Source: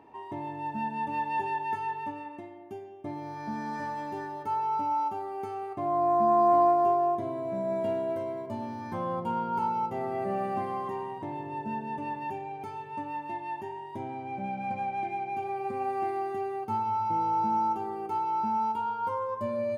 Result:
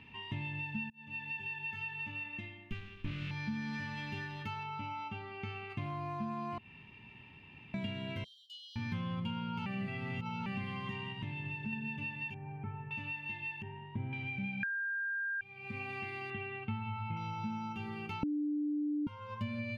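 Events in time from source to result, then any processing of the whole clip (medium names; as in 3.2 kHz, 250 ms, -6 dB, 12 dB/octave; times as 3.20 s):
0.90–1.94 s: fade in
2.71–3.31 s: sliding maximum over 33 samples
4.63–5.70 s: distance through air 140 m
6.58–7.74 s: room tone
8.24–8.76 s: brick-wall FIR high-pass 2.9 kHz
9.66–10.46 s: reverse
11.12–11.73 s: compression, threshold -36 dBFS
12.34–12.91 s: low-pass 1.4 kHz 24 dB/octave
13.62–14.13 s: low-pass 1.2 kHz
14.63–15.41 s: bleep 1.6 kHz -13 dBFS
16.30–17.17 s: low-pass 3.2 kHz 24 dB/octave
18.23–19.07 s: bleep 296 Hz -8 dBFS
whole clip: FFT filter 110 Hz 0 dB, 220 Hz -3 dB, 320 Hz -19 dB, 460 Hz -17 dB, 690 Hz -22 dB, 1.9 kHz +2 dB, 2.7 kHz +14 dB, 8.8 kHz -12 dB; compression, threshold -43 dBFS; bass shelf 360 Hz +7 dB; trim +4 dB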